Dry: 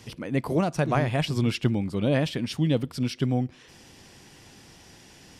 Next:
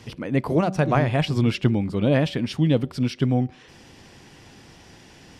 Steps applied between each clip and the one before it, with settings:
high-shelf EQ 5,800 Hz −10 dB
hum removal 190.4 Hz, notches 4
level +4 dB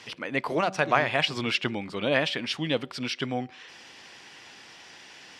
resonant band-pass 2,600 Hz, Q 0.54
level +5 dB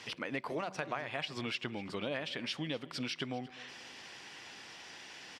downward compressor 5 to 1, threshold −33 dBFS, peak gain reduction 15.5 dB
repeating echo 248 ms, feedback 41%, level −19 dB
level −2 dB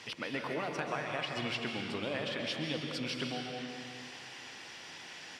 dense smooth reverb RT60 2.2 s, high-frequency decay 0.95×, pre-delay 115 ms, DRR 1.5 dB

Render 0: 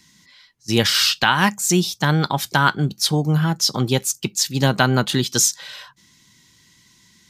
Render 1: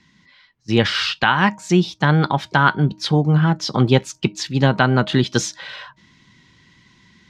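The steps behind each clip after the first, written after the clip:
low-pass filter 2,800 Hz 12 dB per octave
hum removal 312.6 Hz, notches 3
speech leveller within 3 dB 0.5 s
level +3 dB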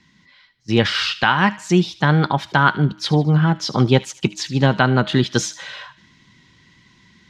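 delay with a high-pass on its return 76 ms, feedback 47%, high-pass 1,600 Hz, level −15.5 dB

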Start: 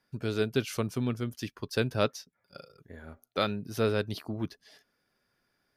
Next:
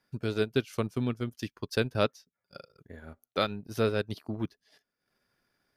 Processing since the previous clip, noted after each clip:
transient designer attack +1 dB, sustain −11 dB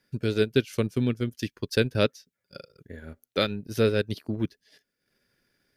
flat-topped bell 930 Hz −8 dB 1.2 octaves
level +5 dB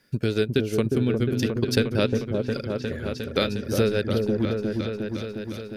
downward compressor 2.5 to 1, threshold −30 dBFS, peak gain reduction 9.5 dB
echo whose low-pass opens from repeat to repeat 357 ms, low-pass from 750 Hz, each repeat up 1 octave, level −3 dB
level +7.5 dB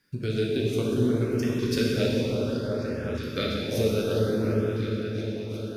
dense smooth reverb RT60 3.1 s, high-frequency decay 0.85×, DRR −4 dB
auto-filter notch saw up 0.63 Hz 600–4,700 Hz
level −6.5 dB

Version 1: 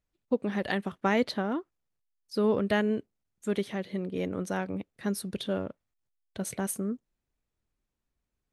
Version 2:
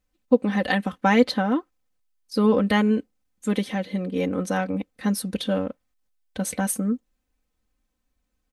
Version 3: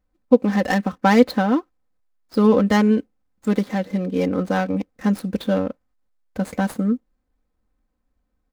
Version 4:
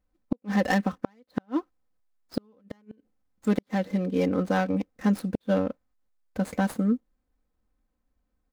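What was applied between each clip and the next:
comb filter 3.9 ms, depth 79%; level +5 dB
running median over 15 samples; level +4 dB
gate with flip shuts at −9 dBFS, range −41 dB; level −3.5 dB

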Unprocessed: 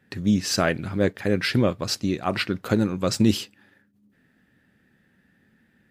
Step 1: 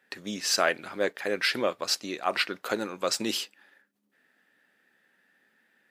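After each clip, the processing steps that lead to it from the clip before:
high-pass filter 540 Hz 12 dB per octave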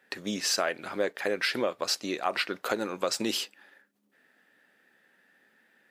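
parametric band 550 Hz +2.5 dB 1.7 octaves
downward compressor 4 to 1, threshold −27 dBFS, peak gain reduction 8.5 dB
level +2 dB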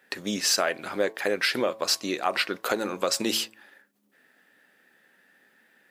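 high-shelf EQ 8,200 Hz +5 dB
hum removal 110.2 Hz, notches 10
level +3 dB

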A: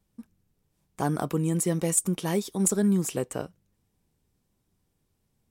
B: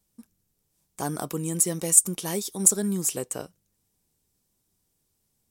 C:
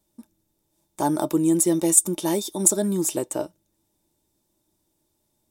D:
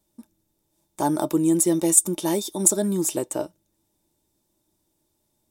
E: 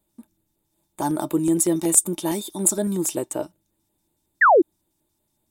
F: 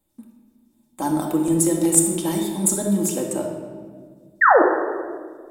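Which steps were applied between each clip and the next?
bass and treble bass −3 dB, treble +11 dB; level −2.5 dB
hollow resonant body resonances 330/610/870/3,600 Hz, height 15 dB, ringing for 55 ms
no processing that can be heard
auto-filter notch square 5.4 Hz 500–5,600 Hz; sound drawn into the spectrogram fall, 0:04.41–0:04.62, 300–2,000 Hz −13 dBFS
rectangular room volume 2,000 cubic metres, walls mixed, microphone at 2.1 metres; level −1.5 dB

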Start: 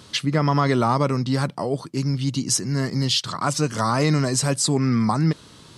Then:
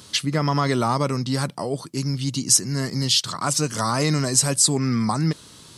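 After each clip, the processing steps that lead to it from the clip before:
high-shelf EQ 5,500 Hz +12 dB
level −2 dB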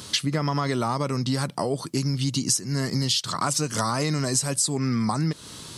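downward compressor 6 to 1, threshold −27 dBFS, peak gain reduction 14.5 dB
level +5.5 dB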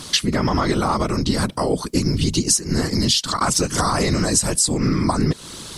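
random phases in short frames
level +5.5 dB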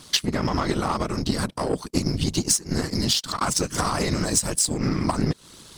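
power curve on the samples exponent 1.4

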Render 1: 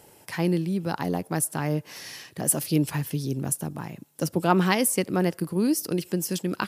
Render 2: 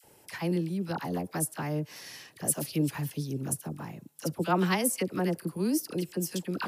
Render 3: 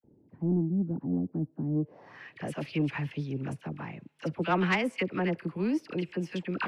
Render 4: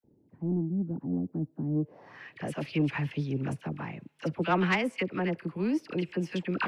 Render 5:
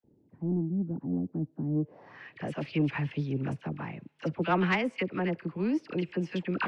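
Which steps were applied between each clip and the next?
all-pass dispersion lows, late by 43 ms, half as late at 990 Hz; level −5 dB
low-pass filter sweep 270 Hz → 2,400 Hz, 0:01.74–0:02.31; soft clipping −17.5 dBFS, distortion −21 dB
speech leveller within 5 dB 2 s
high-frequency loss of the air 81 metres

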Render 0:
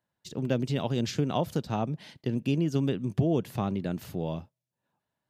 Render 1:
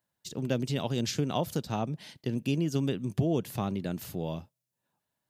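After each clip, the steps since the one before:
high-shelf EQ 4,700 Hz +9.5 dB
level −2 dB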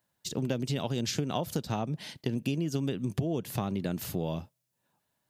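downward compressor 5 to 1, threshold −32 dBFS, peak gain reduction 10 dB
level +5 dB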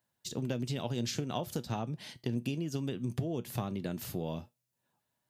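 tuned comb filter 120 Hz, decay 0.2 s, harmonics all, mix 50%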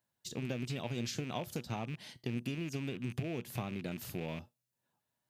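loose part that buzzes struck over −40 dBFS, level −34 dBFS
level −3.5 dB

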